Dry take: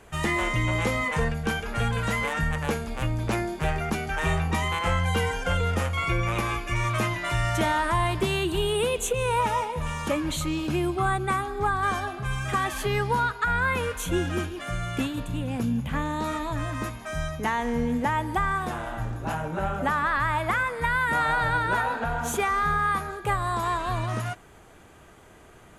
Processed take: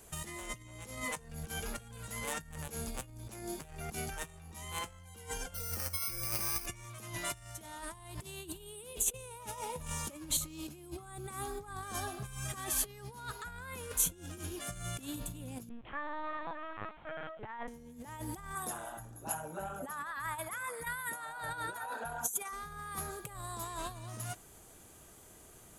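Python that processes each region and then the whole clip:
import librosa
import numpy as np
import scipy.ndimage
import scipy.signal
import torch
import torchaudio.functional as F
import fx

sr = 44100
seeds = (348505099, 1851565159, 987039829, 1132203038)

y = fx.chain(x, sr, fx.peak_eq(hz=1800.0, db=6.5, octaves=1.4),
    fx.over_compress(threshold_db=-30.0, ratio=-0.5),
    fx.resample_bad(factor=6, down='filtered', up='hold'), at=(5.54, 6.66))
y = fx.chain(y, sr, fx.dynamic_eq(hz=1600.0, q=1.3, threshold_db=-40.0, ratio=4.0, max_db=5),
    fx.bandpass_edges(low_hz=430.0, high_hz=2100.0),
    fx.lpc_vocoder(seeds[0], excitation='pitch_kept', order=10), at=(15.69, 17.68))
y = fx.chain(y, sr, fx.envelope_sharpen(power=1.5),
    fx.riaa(side='recording'), at=(18.55, 22.53))
y = fx.peak_eq(y, sr, hz=2000.0, db=-7.5, octaves=2.2)
y = fx.over_compress(y, sr, threshold_db=-32.0, ratio=-0.5)
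y = scipy.signal.lfilter([1.0, -0.8], [1.0], y)
y = F.gain(torch.from_numpy(y), 3.0).numpy()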